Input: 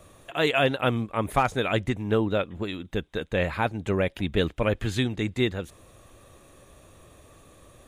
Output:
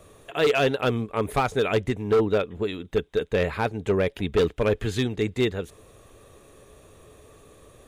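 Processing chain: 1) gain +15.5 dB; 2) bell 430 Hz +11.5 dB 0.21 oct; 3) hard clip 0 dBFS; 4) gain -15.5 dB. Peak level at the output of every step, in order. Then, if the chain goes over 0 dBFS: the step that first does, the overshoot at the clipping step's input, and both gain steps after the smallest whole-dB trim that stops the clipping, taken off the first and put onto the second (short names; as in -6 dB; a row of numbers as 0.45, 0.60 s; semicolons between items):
+4.5, +10.0, 0.0, -15.5 dBFS; step 1, 10.0 dB; step 1 +5.5 dB, step 4 -5.5 dB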